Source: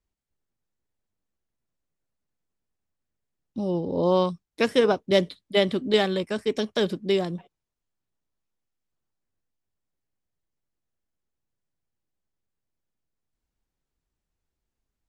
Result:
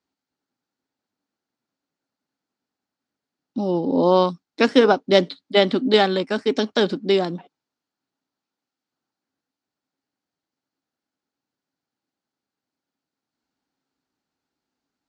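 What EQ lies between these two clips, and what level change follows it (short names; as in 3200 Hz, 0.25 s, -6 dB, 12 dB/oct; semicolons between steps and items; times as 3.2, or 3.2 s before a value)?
speaker cabinet 180–7000 Hz, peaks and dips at 270 Hz +10 dB, 820 Hz +6 dB, 1400 Hz +6 dB, 4400 Hz +6 dB; +3.5 dB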